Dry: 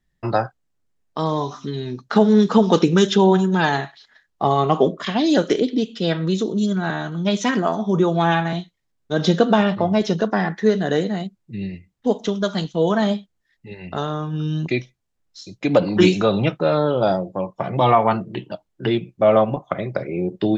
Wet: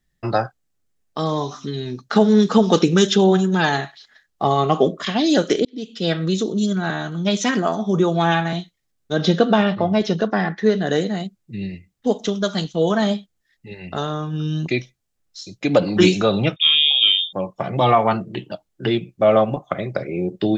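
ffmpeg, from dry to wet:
ffmpeg -i in.wav -filter_complex "[0:a]asettb=1/sr,asplit=3[link_01][link_02][link_03];[link_01]atrim=end=9.164[link_04];[link_02]atrim=start=9.16:end=10.87,asetpts=PTS-STARTPTS,afade=type=in:duration=0.004:curve=qsin,afade=type=out:start_time=1.706:duration=0.004:curve=qsin,lowpass=4700[link_05];[link_03]atrim=start=10.866[link_06];[link_04][link_05]acrossfade=duration=0.004:curve1=hsin:curve2=qsin[link_07];[link_07][link_06]acrossfade=duration=0.004:curve1=qsin:curve2=hsin,asettb=1/sr,asplit=3[link_08][link_09][link_10];[link_08]atrim=end=16.564[link_11];[link_09]atrim=start=16.56:end=17.33,asetpts=PTS-STARTPTS,afade=type=in:duration=0.004:curve=qsin,afade=type=out:start_time=0.766:duration=0.004:curve=qsin,lowpass=frequency=3200:width_type=q:width=0.5098,lowpass=frequency=3200:width_type=q:width=0.6013,lowpass=frequency=3200:width_type=q:width=0.9,lowpass=frequency=3200:width_type=q:width=2.563,afreqshift=-3800[link_12];[link_10]atrim=start=17.326[link_13];[link_11][link_12]acrossfade=duration=0.004:curve1=hsin:curve2=qsin[link_14];[link_14][link_13]acrossfade=duration=0.004:curve1=qsin:curve2=hsin,asplit=2[link_15][link_16];[link_15]atrim=end=5.65,asetpts=PTS-STARTPTS,afade=type=out:start_time=5.646:duration=0.004:curve=hsin[link_17];[link_16]atrim=start=5.65,asetpts=PTS-STARTPTS,afade=type=in:duration=0.44[link_18];[link_17][link_18]concat=n=2:v=0:a=1,highshelf=frequency=4200:gain=6.5,bandreject=frequency=960:width=11" out.wav

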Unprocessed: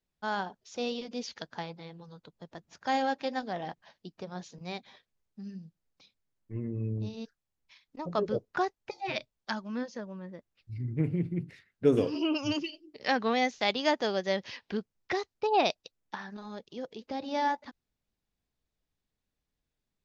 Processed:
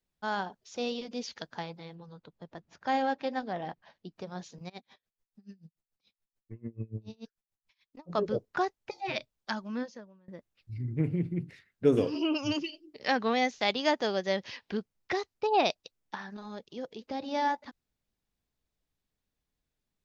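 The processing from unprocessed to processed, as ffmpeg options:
ffmpeg -i in.wav -filter_complex "[0:a]asettb=1/sr,asplit=3[link_01][link_02][link_03];[link_01]atrim=end=1.954[link_04];[link_02]atrim=start=1.95:end=4.16,asetpts=PTS-STARTPTS,afade=type=in:duration=0.004:curve=qsin,afade=type=out:start_time=2.206:duration=0.004:curve=qsin,aemphasis=mode=reproduction:type=50fm[link_05];[link_03]atrim=start=4.156[link_06];[link_04][link_05]acrossfade=duration=0.004:curve1=hsin:curve2=qsin[link_07];[link_07][link_06]acrossfade=duration=0.004:curve1=qsin:curve2=hsin,asplit=3[link_08][link_09][link_10];[link_08]afade=type=out:start_time=4.68:duration=0.02[link_11];[link_09]aeval=exprs='val(0)*pow(10,-28*(0.5-0.5*cos(2*PI*6.9*n/s))/20)':channel_layout=same,afade=type=in:start_time=4.68:duration=0.02,afade=type=out:start_time=8.09:duration=0.02[link_12];[link_10]afade=type=in:start_time=8.09:duration=0.02[link_13];[link_11][link_12][link_13]amix=inputs=3:normalize=0,asplit=2[link_14][link_15];[link_14]atrim=end=10.28,asetpts=PTS-STARTPTS,afade=type=out:start_time=9.82:duration=0.46:curve=qua:silence=0.0707946[link_16];[link_15]atrim=start=10.28,asetpts=PTS-STARTPTS,afade=type=in:duration=0.004:curve=hsin:silence=0.0707946[link_17];[link_16][link_17]concat=n=2:v=0:a=1" out.wav

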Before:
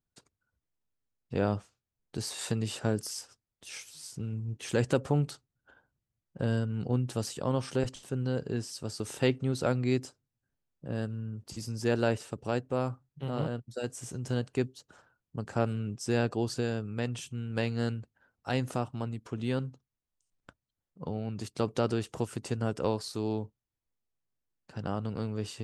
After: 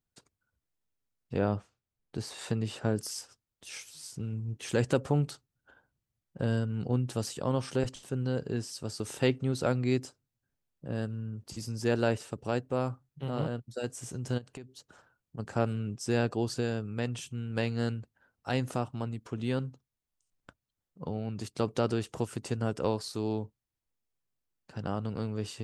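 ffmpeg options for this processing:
ffmpeg -i in.wav -filter_complex "[0:a]asettb=1/sr,asplit=3[link_01][link_02][link_03];[link_01]atrim=end=1.374[link_04];[link_02]atrim=start=1.37:end=2.96,asetpts=PTS-STARTPTS,afade=type=in:duration=0.004:curve=qsin,afade=type=out:start_time=1.586:duration=0.004:curve=qsin,highshelf=frequency=4400:gain=-9.5[link_05];[link_03]atrim=start=2.956[link_06];[link_04][link_05]acrossfade=duration=0.004:curve1=hsin:curve2=qsin[link_07];[link_07][link_06]acrossfade=duration=0.004:curve1=qsin:curve2=hsin,asplit=3[link_08][link_09][link_10];[link_08]afade=type=out:start_time=14.37:duration=0.02[link_11];[link_09]acompressor=threshold=-40dB:ratio=10:attack=3.2:release=140:knee=1:detection=peak,afade=type=in:start_time=14.37:duration=0.02,afade=type=out:start_time=15.38:duration=0.02[link_12];[link_10]afade=type=in:start_time=15.38:duration=0.02[link_13];[link_11][link_12][link_13]amix=inputs=3:normalize=0" out.wav

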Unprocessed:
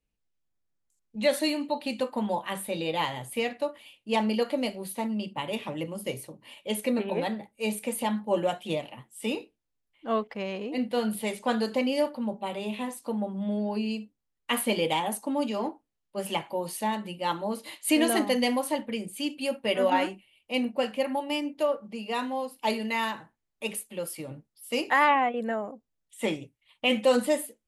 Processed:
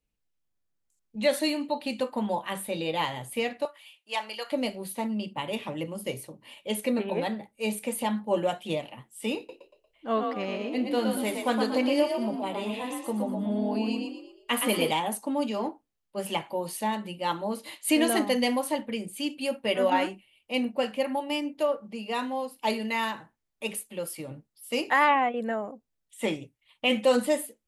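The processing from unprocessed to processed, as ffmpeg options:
ffmpeg -i in.wav -filter_complex "[0:a]asettb=1/sr,asplit=3[link_01][link_02][link_03];[link_01]atrim=end=3.654[link_04];[link_02]atrim=start=3.65:end=4.52,asetpts=PTS-STARTPTS,afade=type=in:duration=0.004:curve=qsin,afade=type=out:start_time=0.866:duration=0.004:curve=qsin,highpass=930[link_05];[link_03]atrim=start=4.516[link_06];[link_04][link_05]acrossfade=duration=0.004:curve1=hsin:curve2=qsin[link_07];[link_07][link_06]acrossfade=duration=0.004:curve1=qsin:curve2=hsin,asettb=1/sr,asplit=3[link_08][link_09][link_10];[link_08]atrim=end=9.374[link_11];[link_09]atrim=start=9.37:end=14.91,asetpts=PTS-STARTPTS,afade=type=in:duration=0.004:curve=qsin,afade=type=out:start_time=5.536:duration=0.004:curve=qsin,asplit=6[link_12][link_13][link_14][link_15][link_16][link_17];[link_13]adelay=117,afreqshift=39,volume=-4.5dB[link_18];[link_14]adelay=234,afreqshift=78,volume=-12.5dB[link_19];[link_15]adelay=351,afreqshift=117,volume=-20.4dB[link_20];[link_16]adelay=468,afreqshift=156,volume=-28.4dB[link_21];[link_17]adelay=585,afreqshift=195,volume=-36.3dB[link_22];[link_12][link_18][link_19][link_20][link_21][link_22]amix=inputs=6:normalize=0,atrim=end_sample=244314[link_23];[link_10]atrim=start=14.906[link_24];[link_11][link_23]acrossfade=duration=0.004:curve1=hsin:curve2=qsin[link_25];[link_25][link_24]acrossfade=duration=0.004:curve1=qsin:curve2=hsin" out.wav

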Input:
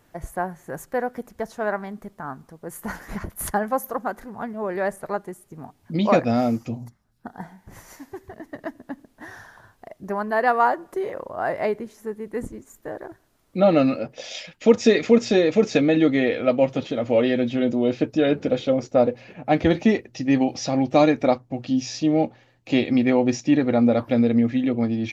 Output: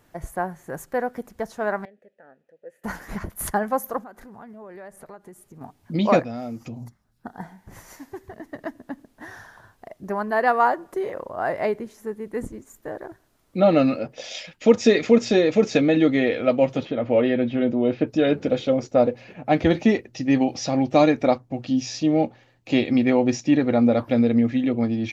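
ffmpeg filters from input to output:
ffmpeg -i in.wav -filter_complex "[0:a]asettb=1/sr,asplit=3[link_01][link_02][link_03];[link_01]atrim=end=1.854[link_04];[link_02]atrim=start=1.85:end=2.84,asetpts=PTS-STARTPTS,afade=type=in:duration=0.004:curve=qsin,afade=type=out:start_time=0.986:duration=0.004:curve=qsin,asplit=3[link_05][link_06][link_07];[link_05]bandpass=frequency=530:width_type=q:width=8,volume=0dB[link_08];[link_06]bandpass=frequency=1840:width_type=q:width=8,volume=-6dB[link_09];[link_07]bandpass=frequency=2480:width_type=q:width=8,volume=-9dB[link_10];[link_08][link_09][link_10]amix=inputs=3:normalize=0[link_11];[link_03]atrim=start=2.836[link_12];[link_04][link_11]acrossfade=duration=0.004:curve1=hsin:curve2=qsin[link_13];[link_13][link_12]acrossfade=duration=0.004:curve1=qsin:curve2=hsin,asettb=1/sr,asplit=3[link_14][link_15][link_16];[link_14]atrim=end=4.034[link_17];[link_15]atrim=start=4.03:end=5.61,asetpts=PTS-STARTPTS,afade=type=in:duration=0.004:curve=qsin,afade=type=out:start_time=1.576:duration=0.004:curve=qsin,acompressor=threshold=-41dB:ratio=4:attack=3.2:release=140:knee=1:detection=peak[link_18];[link_16]atrim=start=5.606[link_19];[link_17][link_18]acrossfade=duration=0.004:curve1=hsin:curve2=qsin[link_20];[link_20][link_19]acrossfade=duration=0.004:curve1=qsin:curve2=hsin,asplit=3[link_21][link_22][link_23];[link_21]afade=type=out:start_time=6.22:duration=0.02[link_24];[link_22]acompressor=threshold=-32dB:ratio=3:attack=3.2:release=140:knee=1:detection=peak,afade=type=in:start_time=6.22:duration=0.02,afade=type=out:start_time=6.76:duration=0.02[link_25];[link_23]afade=type=in:start_time=6.76:duration=0.02[link_26];[link_24][link_25][link_26]amix=inputs=3:normalize=0,asettb=1/sr,asplit=3[link_27][link_28][link_29];[link_27]atrim=end=16.854[link_30];[link_28]atrim=start=16.85:end=18.07,asetpts=PTS-STARTPTS,afade=type=in:duration=0.004:curve=qsin,afade=type=out:start_time=1.216:duration=0.004:curve=qsin,lowpass=2800[link_31];[link_29]atrim=start=18.066[link_32];[link_30][link_31]acrossfade=duration=0.004:curve1=hsin:curve2=qsin[link_33];[link_33][link_32]acrossfade=duration=0.004:curve1=qsin:curve2=hsin" out.wav

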